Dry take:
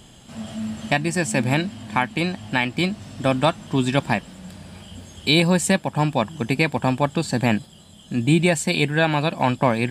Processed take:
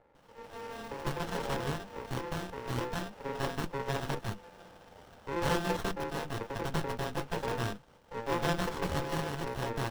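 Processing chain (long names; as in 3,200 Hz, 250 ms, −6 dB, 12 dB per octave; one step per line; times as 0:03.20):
samples in bit-reversed order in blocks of 64 samples
three-way crossover with the lows and the highs turned down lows −23 dB, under 470 Hz, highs −23 dB, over 4,200 Hz
three-band delay without the direct sound mids, highs, lows 150/190 ms, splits 280/1,100 Hz
windowed peak hold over 17 samples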